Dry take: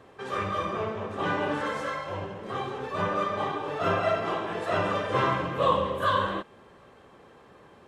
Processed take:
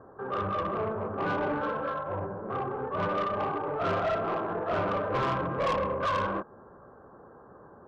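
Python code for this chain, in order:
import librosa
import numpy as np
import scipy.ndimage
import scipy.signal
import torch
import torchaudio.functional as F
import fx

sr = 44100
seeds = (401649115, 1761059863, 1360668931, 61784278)

y = scipy.signal.sosfilt(scipy.signal.ellip(4, 1.0, 40, 1500.0, 'lowpass', fs=sr, output='sos'), x)
y = 10.0 ** (-26.5 / 20.0) * np.tanh(y / 10.0 ** (-26.5 / 20.0))
y = F.gain(torch.from_numpy(y), 2.5).numpy()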